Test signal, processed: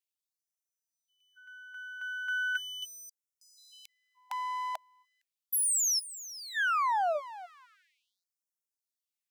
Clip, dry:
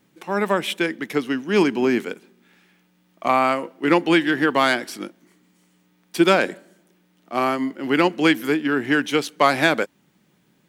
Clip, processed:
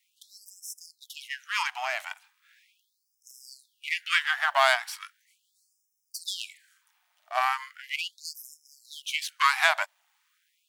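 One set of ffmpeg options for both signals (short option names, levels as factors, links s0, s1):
-af "aeval=exprs='if(lt(val(0),0),0.447*val(0),val(0))':c=same,afftfilt=real='re*gte(b*sr/1024,590*pow(5200/590,0.5+0.5*sin(2*PI*0.38*pts/sr)))':imag='im*gte(b*sr/1024,590*pow(5200/590,0.5+0.5*sin(2*PI*0.38*pts/sr)))':win_size=1024:overlap=0.75"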